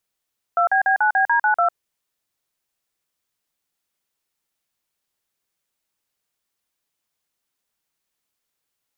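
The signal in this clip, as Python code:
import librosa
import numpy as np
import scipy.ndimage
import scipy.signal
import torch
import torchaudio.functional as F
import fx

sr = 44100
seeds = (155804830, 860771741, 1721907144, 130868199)

y = fx.dtmf(sr, digits='2BB9BD92', tone_ms=102, gap_ms=43, level_db=-17.0)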